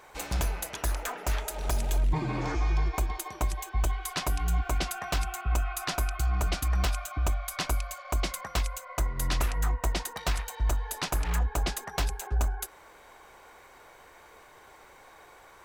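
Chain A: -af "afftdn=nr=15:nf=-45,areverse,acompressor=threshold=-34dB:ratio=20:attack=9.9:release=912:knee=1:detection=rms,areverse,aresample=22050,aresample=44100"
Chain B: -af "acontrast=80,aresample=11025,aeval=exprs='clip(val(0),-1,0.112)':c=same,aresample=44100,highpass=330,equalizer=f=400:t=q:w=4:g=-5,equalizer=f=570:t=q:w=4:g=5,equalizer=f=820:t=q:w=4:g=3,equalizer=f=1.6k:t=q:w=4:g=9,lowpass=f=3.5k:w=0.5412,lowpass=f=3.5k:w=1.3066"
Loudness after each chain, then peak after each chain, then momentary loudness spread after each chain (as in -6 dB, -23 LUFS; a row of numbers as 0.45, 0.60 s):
-43.0, -28.5 LUFS; -28.0, -9.5 dBFS; 20, 16 LU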